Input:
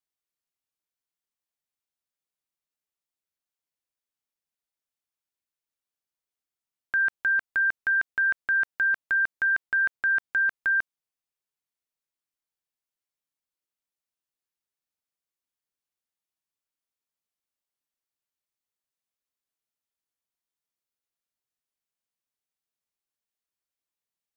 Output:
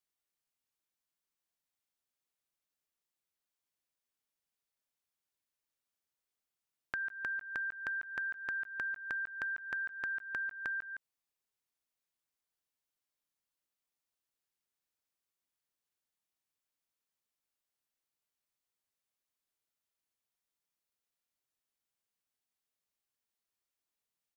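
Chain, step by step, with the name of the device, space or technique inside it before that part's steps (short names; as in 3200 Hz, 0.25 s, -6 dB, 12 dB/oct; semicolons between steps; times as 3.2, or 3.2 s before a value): echo 0.163 s -16 dB; serial compression, peaks first (compressor, threshold -33 dBFS, peak gain reduction 10.5 dB; compressor 2:1, threshold -38 dBFS, peak gain reduction 4.5 dB)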